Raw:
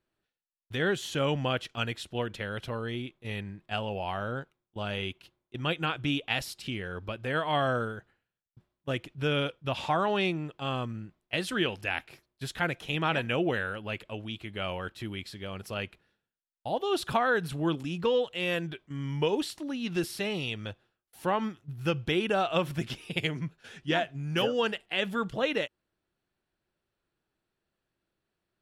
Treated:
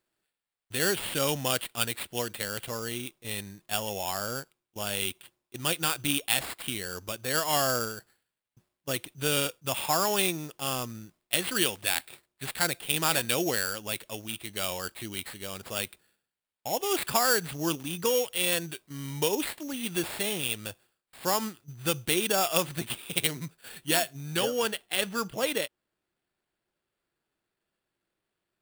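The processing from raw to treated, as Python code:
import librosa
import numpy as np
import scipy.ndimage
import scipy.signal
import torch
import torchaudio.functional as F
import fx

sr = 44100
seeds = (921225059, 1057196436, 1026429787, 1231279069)

y = fx.low_shelf(x, sr, hz=160.0, db=-7.5)
y = fx.sample_hold(y, sr, seeds[0], rate_hz=6100.0, jitter_pct=0)
y = fx.high_shelf(y, sr, hz=4500.0, db=fx.steps((0.0, 10.5), (24.35, 3.5)))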